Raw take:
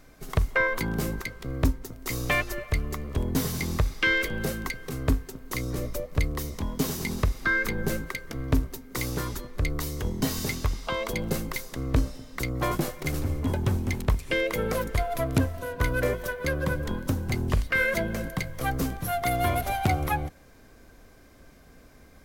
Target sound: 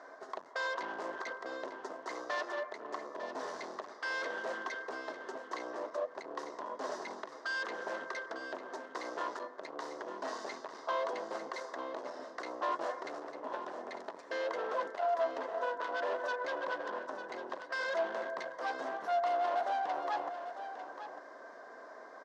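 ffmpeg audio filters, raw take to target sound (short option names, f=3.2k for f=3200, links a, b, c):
-filter_complex "[0:a]aeval=exprs='0.133*(abs(mod(val(0)/0.133+3,4)-2)-1)':c=same,areverse,acompressor=threshold=-35dB:ratio=5,areverse,highshelf=f=2.2k:t=q:w=3:g=-6,asoftclip=type=hard:threshold=-37.5dB,highpass=f=360:w=0.5412,highpass=f=360:w=1.3066,equalizer=f=650:t=q:w=4:g=9,equalizer=f=990:t=q:w=4:g=9,equalizer=f=2.3k:t=q:w=4:g=-8,lowpass=f=6k:w=0.5412,lowpass=f=6k:w=1.3066,asplit=2[a][b];[b]aecho=0:1:899:0.299[c];[a][c]amix=inputs=2:normalize=0,volume=3dB"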